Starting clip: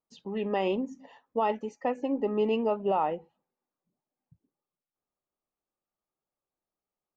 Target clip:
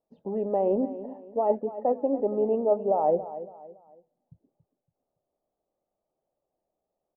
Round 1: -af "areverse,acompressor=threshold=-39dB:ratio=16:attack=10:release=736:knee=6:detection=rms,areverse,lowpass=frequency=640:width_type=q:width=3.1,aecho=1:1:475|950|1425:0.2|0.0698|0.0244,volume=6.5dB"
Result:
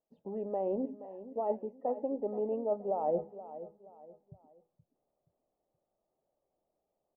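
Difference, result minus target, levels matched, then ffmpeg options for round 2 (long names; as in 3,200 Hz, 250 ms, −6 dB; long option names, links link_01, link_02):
echo 194 ms late; downward compressor: peak gain reduction +8.5 dB
-af "areverse,acompressor=threshold=-30dB:ratio=16:attack=10:release=736:knee=6:detection=rms,areverse,lowpass=frequency=640:width_type=q:width=3.1,aecho=1:1:281|562|843:0.2|0.0698|0.0244,volume=6.5dB"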